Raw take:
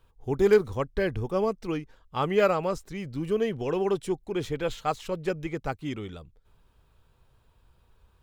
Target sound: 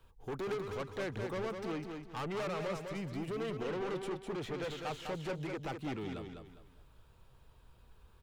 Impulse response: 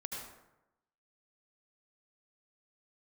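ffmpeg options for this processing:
-filter_complex "[0:a]acrossover=split=120|520|3100[link_01][link_02][link_03][link_04];[link_01]acompressor=threshold=-54dB:ratio=4[link_05];[link_02]acompressor=threshold=-32dB:ratio=4[link_06];[link_03]acompressor=threshold=-28dB:ratio=4[link_07];[link_04]acompressor=threshold=-57dB:ratio=4[link_08];[link_05][link_06][link_07][link_08]amix=inputs=4:normalize=0,asoftclip=type=tanh:threshold=-35.5dB,asplit=2[link_09][link_10];[link_10]aecho=0:1:203|406|609|812:0.531|0.17|0.0544|0.0174[link_11];[link_09][link_11]amix=inputs=2:normalize=0"

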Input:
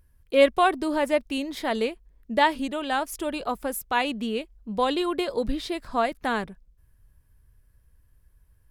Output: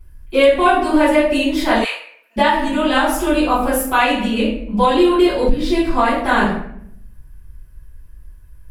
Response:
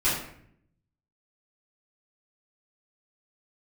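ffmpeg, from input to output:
-filter_complex "[1:a]atrim=start_sample=2205[link_01];[0:a][link_01]afir=irnorm=-1:irlink=0,alimiter=limit=-3.5dB:level=0:latency=1:release=390,asplit=3[link_02][link_03][link_04];[link_02]afade=type=out:start_time=1.84:duration=0.02[link_05];[link_03]highpass=frequency=920:width=0.5412,highpass=frequency=920:width=1.3066,afade=type=in:start_time=1.84:duration=0.02,afade=type=out:start_time=2.36:duration=0.02[link_06];[link_04]afade=type=in:start_time=2.36:duration=0.02[link_07];[link_05][link_06][link_07]amix=inputs=3:normalize=0"

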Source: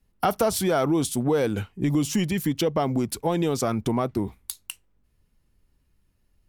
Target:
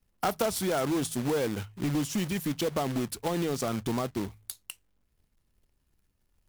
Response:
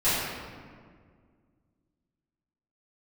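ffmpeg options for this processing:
-af "acrusher=bits=2:mode=log:mix=0:aa=0.000001,bandreject=frequency=53.17:width_type=h:width=4,bandreject=frequency=106.34:width_type=h:width=4,bandreject=frequency=159.51:width_type=h:width=4,volume=-6dB"

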